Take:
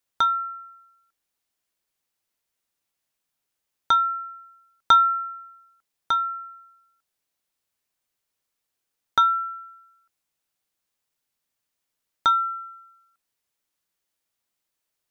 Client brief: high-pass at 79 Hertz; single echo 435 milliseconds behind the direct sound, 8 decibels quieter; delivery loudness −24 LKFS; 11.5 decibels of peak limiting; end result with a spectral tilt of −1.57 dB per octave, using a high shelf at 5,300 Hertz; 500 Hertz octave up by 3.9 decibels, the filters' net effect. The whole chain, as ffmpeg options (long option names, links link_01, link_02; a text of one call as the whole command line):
ffmpeg -i in.wav -af "highpass=79,equalizer=frequency=500:width_type=o:gain=5,highshelf=frequency=5300:gain=-8,alimiter=limit=-19dB:level=0:latency=1,aecho=1:1:435:0.398,volume=4dB" out.wav